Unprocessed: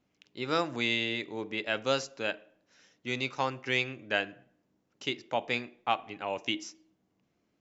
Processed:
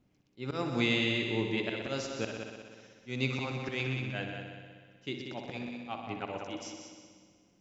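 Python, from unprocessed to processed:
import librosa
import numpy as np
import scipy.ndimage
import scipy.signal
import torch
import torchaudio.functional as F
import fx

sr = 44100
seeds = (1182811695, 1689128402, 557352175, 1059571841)

p1 = fx.low_shelf(x, sr, hz=280.0, db=12.0)
p2 = fx.auto_swell(p1, sr, attack_ms=190.0)
p3 = p2 + fx.echo_heads(p2, sr, ms=62, heads='all three', feedback_pct=58, wet_db=-10.0, dry=0)
p4 = fx.rev_spring(p3, sr, rt60_s=2.2, pass_ms=(45,), chirp_ms=75, drr_db=15.5)
y = p4 * librosa.db_to_amplitude(-1.5)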